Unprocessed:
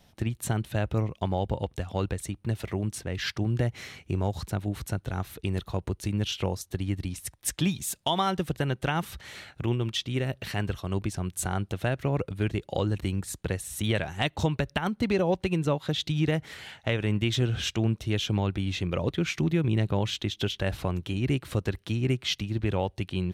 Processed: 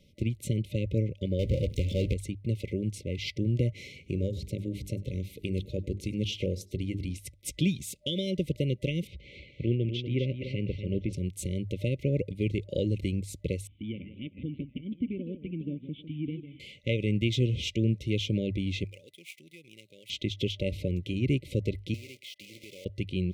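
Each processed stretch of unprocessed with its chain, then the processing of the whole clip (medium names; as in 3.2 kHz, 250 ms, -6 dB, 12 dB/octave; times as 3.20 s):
1.39–2.14 s: peaking EQ 310 Hz -4 dB 1.8 oct + power-law waveshaper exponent 0.5
3.91–7.18 s: hum notches 50/100/150/200/250/300/350/400 Hz + upward compressor, threshold -46 dBFS + delay 100 ms -21.5 dB
9.07–11.13 s: low-pass 2.8 kHz + delay 245 ms -8.5 dB
13.67–16.60 s: cascade formant filter i + modulated delay 158 ms, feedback 37%, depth 213 cents, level -11 dB
18.84–20.10 s: median filter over 9 samples + differentiator
21.94–22.86 s: block-companded coder 3-bit + high-pass 1.3 kHz 6 dB/octave + compression 4:1, threshold -40 dBFS
whole clip: FFT band-reject 600–2000 Hz; treble shelf 5.1 kHz -10 dB; hum notches 50/100 Hz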